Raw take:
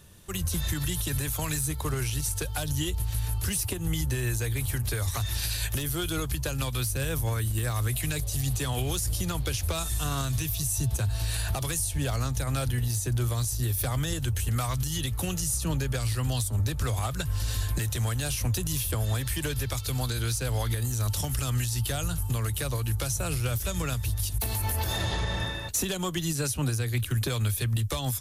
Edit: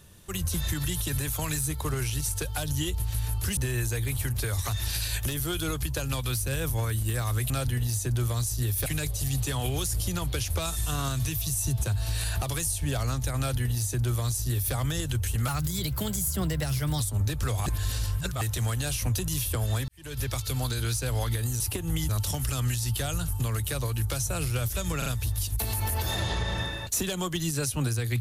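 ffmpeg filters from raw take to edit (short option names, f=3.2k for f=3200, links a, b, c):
-filter_complex "[0:a]asplit=13[a][b][c][d][e][f][g][h][i][j][k][l][m];[a]atrim=end=3.572[n];[b]atrim=start=4.058:end=7.992[o];[c]atrim=start=12.508:end=13.872[p];[d]atrim=start=7.988:end=14.614[q];[e]atrim=start=14.61:end=16.39,asetpts=PTS-STARTPTS,asetrate=51597,aresample=44100,atrim=end_sample=67092,asetpts=PTS-STARTPTS[r];[f]atrim=start=16.386:end=17.052[s];[g]atrim=start=17.048:end=17.802,asetpts=PTS-STARTPTS,areverse[t];[h]atrim=start=17.798:end=19.27,asetpts=PTS-STARTPTS,afade=t=out:st=1.468:d=0.004:c=hsin[u];[i]atrim=start=19.27:end=20.992,asetpts=PTS-STARTPTS,afade=t=in:d=0.34:c=qua[v];[j]atrim=start=3.568:end=4.062[w];[k]atrim=start=20.988:end=23.922[x];[l]atrim=start=23.878:end=23.922[y];[m]atrim=start=23.878[z];[n][o]acrossfade=d=0.004:c1=hsin:c2=hsin[aa];[aa][p]acrossfade=d=0.004:c1=hsin:c2=hsin[ab];[ab][q]acrossfade=d=0.004:c1=hsin:c2=hsin[ac];[ac][r]acrossfade=d=0.004:c1=hsin:c2=hsin[ad];[ad][s]acrossfade=d=0.004:c1=hsin:c2=hsin[ae];[ae][t]acrossfade=d=0.004:c1=hsin:c2=hsin[af];[u][v]concat=n=2:v=0:a=1[ag];[af][ag]acrossfade=d=0.004:c1=hsin:c2=hsin[ah];[ah][w]acrossfade=d=0.004:c1=hsin:c2=hsin[ai];[ai][x]acrossfade=d=0.004:c1=hsin:c2=hsin[aj];[aj][y]acrossfade=d=0.004:c1=hsin:c2=hsin[ak];[ak][z]acrossfade=d=0.004:c1=hsin:c2=hsin"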